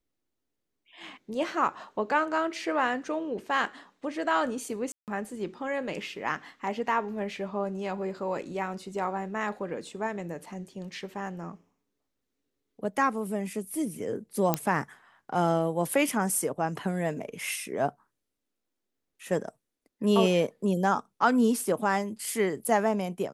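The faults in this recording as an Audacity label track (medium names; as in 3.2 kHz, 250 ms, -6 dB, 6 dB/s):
4.920000	5.080000	dropout 158 ms
14.540000	14.540000	pop -9 dBFS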